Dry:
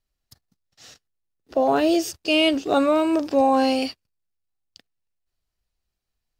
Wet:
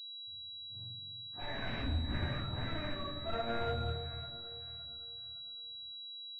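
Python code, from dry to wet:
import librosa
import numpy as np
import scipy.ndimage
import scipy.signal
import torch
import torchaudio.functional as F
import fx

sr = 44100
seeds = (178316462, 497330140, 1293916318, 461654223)

p1 = fx.octave_mirror(x, sr, pivot_hz=640.0)
p2 = fx.doppler_pass(p1, sr, speed_mps=37, closest_m=2.4, pass_at_s=1.83)
p3 = fx.over_compress(p2, sr, threshold_db=-43.0, ratio=-1.0)
p4 = p2 + (p3 * librosa.db_to_amplitude(2.5))
p5 = 10.0 ** (-31.5 / 20.0) * (np.abs((p4 / 10.0 ** (-31.5 / 20.0) + 3.0) % 4.0 - 2.0) - 1.0)
p6 = fx.spec_box(p5, sr, start_s=1.38, length_s=1.83, low_hz=280.0, high_hz=1500.0, gain_db=-9)
p7 = p6 + fx.echo_alternate(p6, sr, ms=281, hz=900.0, feedback_pct=56, wet_db=-7.0, dry=0)
p8 = fx.room_shoebox(p7, sr, seeds[0], volume_m3=110.0, walls='mixed', distance_m=1.8)
p9 = fx.pwm(p8, sr, carrier_hz=3900.0)
y = p9 * librosa.db_to_amplitude(-6.0)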